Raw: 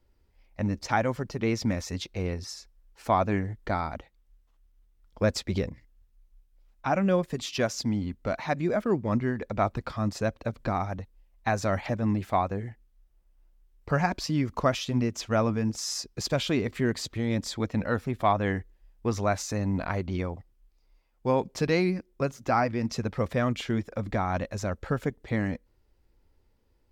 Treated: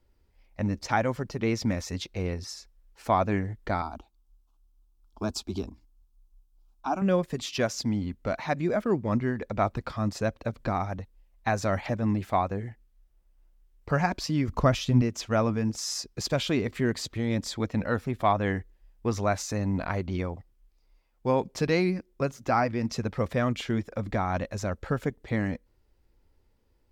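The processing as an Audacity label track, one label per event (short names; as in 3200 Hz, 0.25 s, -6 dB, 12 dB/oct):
3.820000	7.020000	fixed phaser centre 520 Hz, stages 6
14.480000	15.020000	low shelf 160 Hz +12 dB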